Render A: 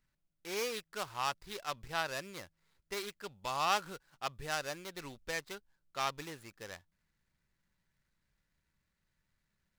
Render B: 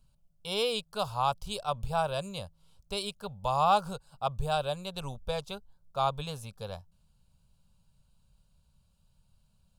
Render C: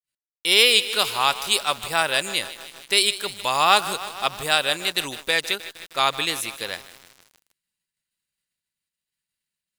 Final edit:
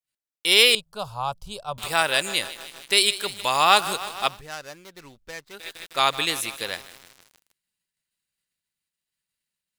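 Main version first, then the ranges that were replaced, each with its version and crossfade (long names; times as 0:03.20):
C
0:00.75–0:01.78: punch in from B
0:04.34–0:05.60: punch in from A, crossfade 0.16 s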